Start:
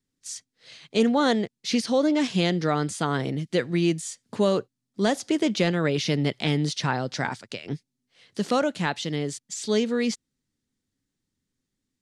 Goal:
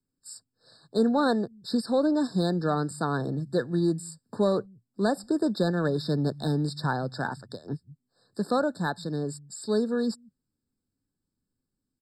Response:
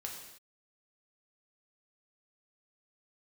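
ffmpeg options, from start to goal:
-filter_complex "[0:a]acrossover=split=130|4000[link_01][link_02][link_03];[link_01]aecho=1:1:178:0.531[link_04];[link_02]adynamicsmooth=sensitivity=4.5:basefreq=2300[link_05];[link_04][link_05][link_03]amix=inputs=3:normalize=0,afftfilt=real='re*eq(mod(floor(b*sr/1024/1800),2),0)':imag='im*eq(mod(floor(b*sr/1024/1800),2),0)':win_size=1024:overlap=0.75,volume=-2dB"

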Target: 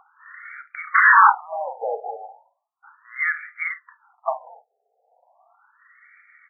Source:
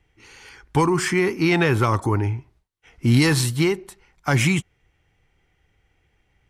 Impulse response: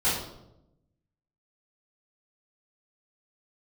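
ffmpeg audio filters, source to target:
-filter_complex "[0:a]asplit=2[link_01][link_02];[link_02]acompressor=threshold=-28dB:ratio=6,volume=-3dB[link_03];[link_01][link_03]amix=inputs=2:normalize=0,bass=frequency=250:gain=10,treble=frequency=4000:gain=0,afreqshift=-65,highpass=frequency=83:poles=1,acompressor=mode=upward:threshold=-32dB:ratio=2.5,asplit=2[link_04][link_05];[link_05]aecho=0:1:37|50:0.237|0.178[link_06];[link_04][link_06]amix=inputs=2:normalize=0,asplit=3[link_07][link_08][link_09];[link_07]afade=type=out:start_time=0.94:duration=0.02[link_10];[link_08]aeval=exprs='0.531*sin(PI/2*5.62*val(0)/0.531)':channel_layout=same,afade=type=in:start_time=0.94:duration=0.02,afade=type=out:start_time=1.39:duration=0.02[link_11];[link_09]afade=type=in:start_time=1.39:duration=0.02[link_12];[link_10][link_11][link_12]amix=inputs=3:normalize=0,afftfilt=real='re*between(b*sr/1024,590*pow(1700/590,0.5+0.5*sin(2*PI*0.36*pts/sr))/1.41,590*pow(1700/590,0.5+0.5*sin(2*PI*0.36*pts/sr))*1.41)':imag='im*between(b*sr/1024,590*pow(1700/590,0.5+0.5*sin(2*PI*0.36*pts/sr))/1.41,590*pow(1700/590,0.5+0.5*sin(2*PI*0.36*pts/sr))*1.41)':win_size=1024:overlap=0.75,volume=2dB"

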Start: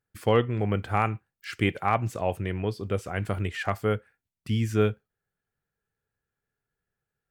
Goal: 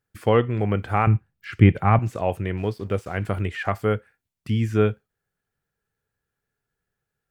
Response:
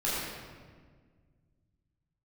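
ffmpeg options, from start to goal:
-filter_complex "[0:a]asettb=1/sr,asplit=3[link_01][link_02][link_03];[link_01]atrim=end=2.574[link_04];[link_02]atrim=start=2.57:end=3.23,asetpts=PTS-STARTPTS,afade=type=in:duration=0.004:curve=qsin,afade=type=out:start_time=0.656:duration=0.004:curve=qsin,aeval=exprs='sgn(val(0))*max(abs(val(0))-0.00266,0)':channel_layout=same[link_05];[link_03]atrim=start=3.226[link_06];[link_04][link_05]acrossfade=duration=0.004:curve1=hsin:curve2=qsin[link_07];[link_07][link_06]acrossfade=duration=0.004:curve1=qsin:curve2=hsin,acrossover=split=2900[link_08][link_09];[link_09]acompressor=threshold=-50dB:ratio=4:attack=1:release=60[link_10];[link_08][link_10]amix=inputs=2:normalize=0,asettb=1/sr,asplit=3[link_11][link_12][link_13];[link_11]atrim=end=1.074[link_14];[link_12]atrim=start=1.07:end=1.99,asetpts=PTS-STARTPTS,afade=type=in:duration=0.004:curve=qsin,afade=type=out:start_time=0.916:duration=0.004:curve=qsin,bass=frequency=250:gain=12,treble=frequency=4000:gain=-6[link_15];[link_13]atrim=start=1.986[link_16];[link_14][link_15]acrossfade=duration=0.004:curve1=hsin:curve2=qsin[link_17];[link_17][link_16]acrossfade=duration=0.004:curve1=qsin:curve2=hsin,volume=3.5dB"

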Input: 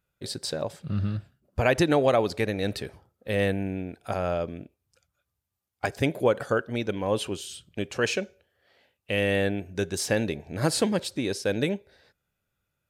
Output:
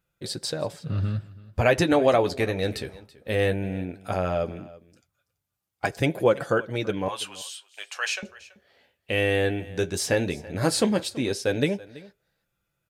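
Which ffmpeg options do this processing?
ffmpeg -i in.wav -filter_complex "[0:a]asettb=1/sr,asplit=3[link_01][link_02][link_03];[link_01]atrim=end=7.084[link_04];[link_02]atrim=start=7.08:end=8.23,asetpts=PTS-STARTPTS,afade=type=in:duration=0.004:curve=qsin,afade=type=out:start_time=1.146:duration=0.004:curve=qsin,highpass=frequency=840:width=0.5412,highpass=frequency=840:width=1.3066[link_05];[link_03]atrim=start=8.226[link_06];[link_04][link_05]acrossfade=duration=0.004:curve1=hsin:curve2=qsin[link_07];[link_07][link_06]acrossfade=duration=0.004:curve1=qsin:curve2=hsin,flanger=delay=5.8:depth=6.8:regen=-38:speed=0.16:shape=sinusoidal,asplit=2[link_08][link_09];[link_09]aecho=0:1:331:0.1[link_10];[link_08][link_10]amix=inputs=2:normalize=0,volume=5.5dB" out.wav

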